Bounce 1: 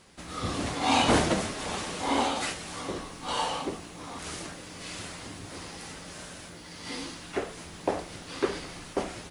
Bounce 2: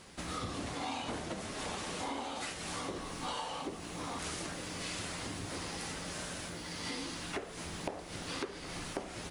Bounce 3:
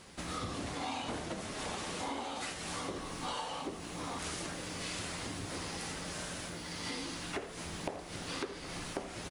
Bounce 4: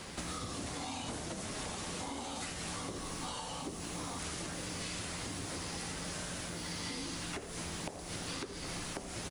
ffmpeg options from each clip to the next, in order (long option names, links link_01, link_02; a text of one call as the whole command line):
ffmpeg -i in.wav -af "acompressor=threshold=-38dB:ratio=16,volume=2.5dB" out.wav
ffmpeg -i in.wav -af "aecho=1:1:82:0.168" out.wav
ffmpeg -i in.wav -filter_complex "[0:a]acrossover=split=210|5100[link_01][link_02][link_03];[link_01]acompressor=threshold=-54dB:ratio=4[link_04];[link_02]acompressor=threshold=-52dB:ratio=4[link_05];[link_03]acompressor=threshold=-54dB:ratio=4[link_06];[link_04][link_05][link_06]amix=inputs=3:normalize=0,volume=8.5dB" out.wav